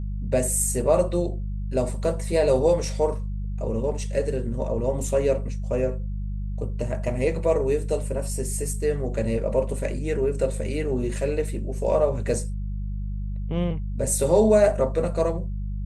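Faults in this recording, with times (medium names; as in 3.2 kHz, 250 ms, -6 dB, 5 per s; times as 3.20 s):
hum 50 Hz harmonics 4 -29 dBFS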